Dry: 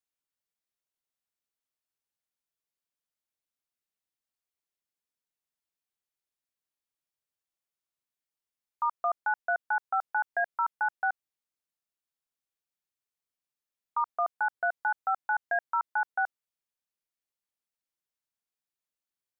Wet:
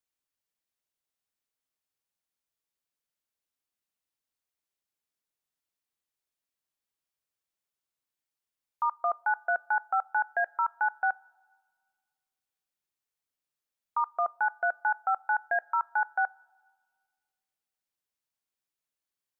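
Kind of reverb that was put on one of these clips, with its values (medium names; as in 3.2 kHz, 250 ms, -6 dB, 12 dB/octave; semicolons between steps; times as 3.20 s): two-slope reverb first 0.2 s, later 1.7 s, from -18 dB, DRR 19.5 dB; trim +1 dB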